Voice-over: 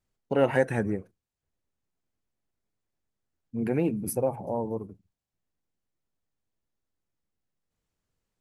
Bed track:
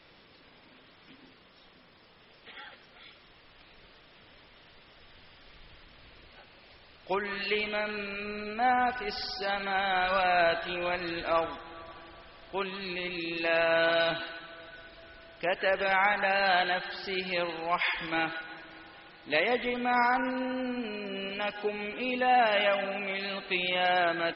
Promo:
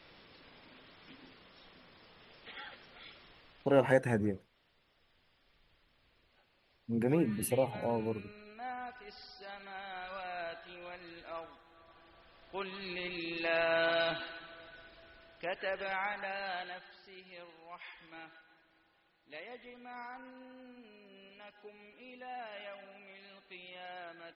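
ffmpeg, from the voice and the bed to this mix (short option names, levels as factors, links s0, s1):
-filter_complex "[0:a]adelay=3350,volume=0.668[s0];[1:a]volume=3.35,afade=t=out:st=3.2:d=0.85:silence=0.16788,afade=t=in:st=11.72:d=1.28:silence=0.266073,afade=t=out:st=14.43:d=2.68:silence=0.158489[s1];[s0][s1]amix=inputs=2:normalize=0"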